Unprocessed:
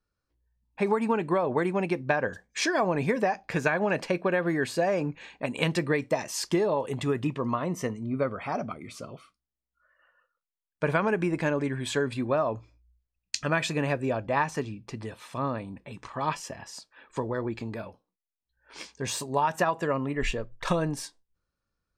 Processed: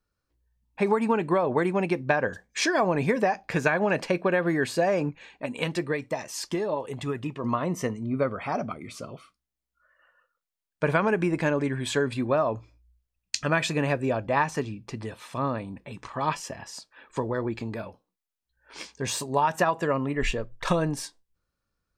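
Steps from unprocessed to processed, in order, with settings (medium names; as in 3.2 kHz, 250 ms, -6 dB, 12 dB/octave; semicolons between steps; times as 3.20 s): 5.09–7.44 s: flange 1 Hz, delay 0.7 ms, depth 3.7 ms, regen +66%; trim +2 dB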